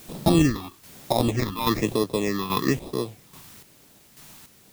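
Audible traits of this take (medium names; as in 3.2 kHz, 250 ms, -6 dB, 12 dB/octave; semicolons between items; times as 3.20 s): aliases and images of a low sample rate 1.5 kHz, jitter 0%; phasing stages 6, 1.1 Hz, lowest notch 510–2200 Hz; a quantiser's noise floor 10-bit, dither triangular; chopped level 1.2 Hz, depth 60%, duty 35%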